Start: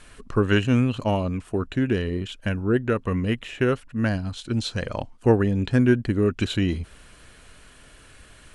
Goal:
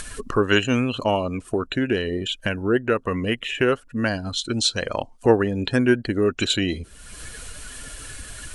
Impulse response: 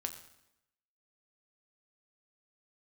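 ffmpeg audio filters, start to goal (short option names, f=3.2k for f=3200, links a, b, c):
-af "afftdn=nr=16:nf=-43,bass=f=250:g=-10,treble=f=4k:g=12,acompressor=mode=upward:threshold=-24dB:ratio=2.5,volume=4dB"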